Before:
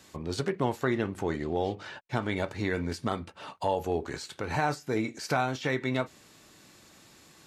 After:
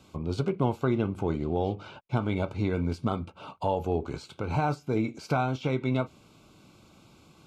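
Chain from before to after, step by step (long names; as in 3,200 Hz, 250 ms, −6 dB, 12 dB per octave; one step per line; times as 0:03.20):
Butterworth band-reject 1,800 Hz, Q 2.7
bass and treble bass +6 dB, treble −10 dB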